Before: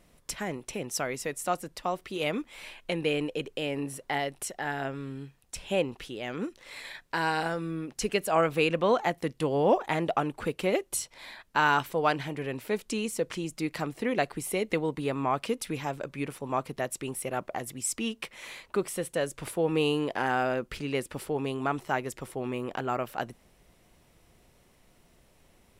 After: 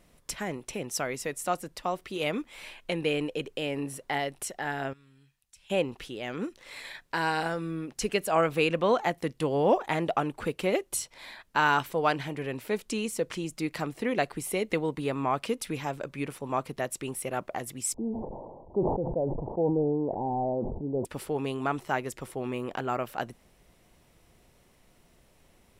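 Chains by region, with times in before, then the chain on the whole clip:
4.93–5.70 s: amplifier tone stack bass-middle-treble 5-5-5 + compression 2:1, threshold -58 dBFS
17.94–21.05 s: one-bit delta coder 64 kbps, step -43 dBFS + steep low-pass 910 Hz 72 dB/octave + decay stretcher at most 36 dB/s
whole clip: none

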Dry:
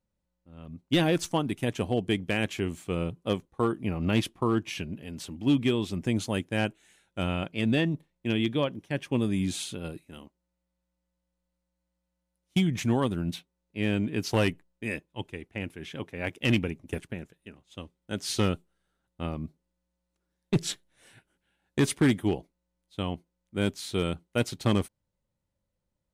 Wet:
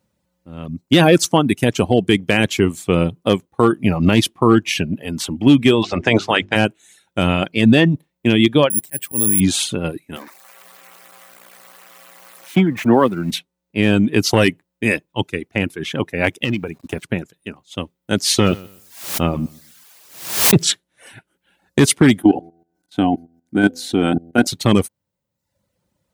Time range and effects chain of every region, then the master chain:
5.82–6.55 s: spectral peaks clipped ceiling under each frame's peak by 20 dB + distance through air 170 m + hum notches 50/100/150/200/250/300/350/400 Hz
8.70–9.40 s: slow attack 340 ms + careless resampling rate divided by 4×, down filtered, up zero stuff
10.16–13.31 s: zero-crossing glitches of -27.5 dBFS + three-band isolator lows -12 dB, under 210 Hz, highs -22 dB, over 2.2 kHz
16.44–17.04 s: treble shelf 5.2 kHz -8 dB + compression 2.5:1, threshold -37 dBFS + small samples zeroed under -57 dBFS
18.45–20.64 s: feedback delay 125 ms, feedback 25%, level -14 dB + added noise white -62 dBFS + swell ahead of each attack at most 92 dB/s
22.21–24.47 s: de-hum 83.95 Hz, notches 9 + small resonant body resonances 280/730/1500 Hz, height 17 dB, ringing for 35 ms + level held to a coarse grid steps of 15 dB
whole clip: high-pass 94 Hz 12 dB/octave; reverb removal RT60 0.7 s; loudness maximiser +17 dB; trim -1 dB

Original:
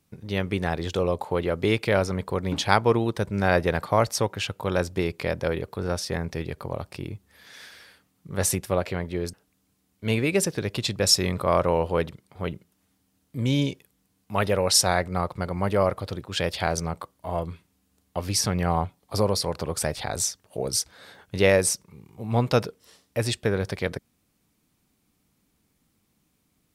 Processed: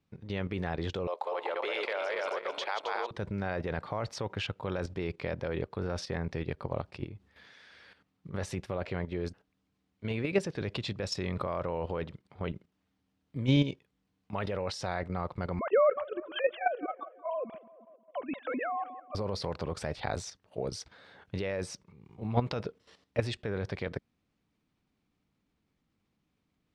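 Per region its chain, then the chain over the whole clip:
1.07–3.11 s: backward echo that repeats 135 ms, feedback 60%, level -1.5 dB + high-pass 520 Hz 24 dB/octave + compression 2:1, threshold -28 dBFS
15.59–19.15 s: formants replaced by sine waves + tape echo 180 ms, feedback 68%, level -16 dB, low-pass 1.4 kHz
whole clip: peak limiter -14 dBFS; level held to a coarse grid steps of 11 dB; low-pass 3.8 kHz 12 dB/octave

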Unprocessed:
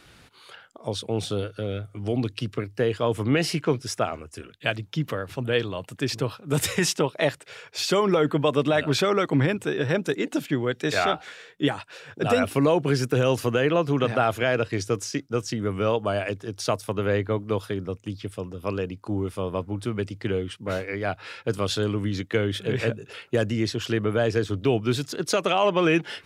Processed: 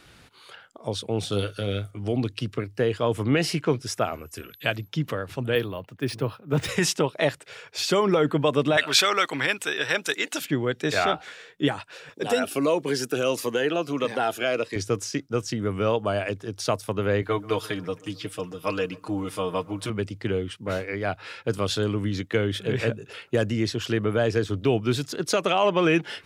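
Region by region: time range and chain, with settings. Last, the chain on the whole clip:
1.32–1.91 s: treble shelf 2.2 kHz +10.5 dB + doubling 20 ms -9.5 dB
3.94–4.87 s: whistle 12 kHz -58 dBFS + tape noise reduction on one side only encoder only
5.55–6.69 s: careless resampling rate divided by 3×, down filtered, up hold + treble shelf 4.8 kHz -9.5 dB + three bands expanded up and down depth 40%
8.77–10.45 s: high-pass 260 Hz 6 dB/octave + tilt shelf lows -9.5 dB, about 800 Hz
12.09–14.76 s: high-pass 270 Hz + treble shelf 3.9 kHz +4.5 dB + Shepard-style phaser falling 1.6 Hz
17.22–19.90 s: tilt shelf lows -5 dB, about 680 Hz + comb 6.5 ms, depth 80% + feedback echo behind a low-pass 135 ms, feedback 59%, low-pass 2 kHz, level -22 dB
whole clip: none

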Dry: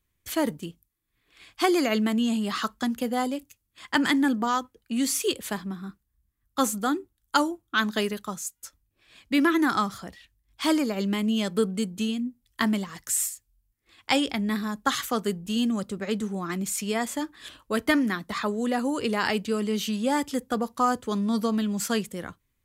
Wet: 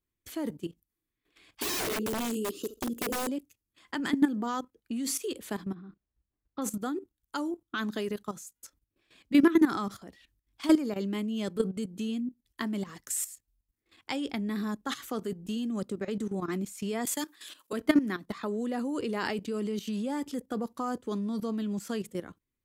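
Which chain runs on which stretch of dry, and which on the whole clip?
1.61–3.29 s: FFT filter 130 Hz 0 dB, 220 Hz -6 dB, 340 Hz +12 dB, 520 Hz +7 dB, 740 Hz -29 dB, 1.9 kHz -29 dB, 2.7 kHz -1 dB, 4.1 kHz -7 dB, 7.3 kHz +6 dB, 13 kHz +11 dB + flutter echo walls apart 11.7 m, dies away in 0.27 s + integer overflow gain 21 dB
5.74–6.62 s: careless resampling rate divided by 4×, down none, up filtered + tape spacing loss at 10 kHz 21 dB + tape noise reduction on one side only decoder only
17.05–17.73 s: de-esser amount 35% + high-pass 140 Hz 24 dB/octave + tilt EQ +4 dB/octave
whole clip: peaking EQ 330 Hz +8 dB 1.4 oct; level held to a coarse grid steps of 14 dB; trim -3.5 dB

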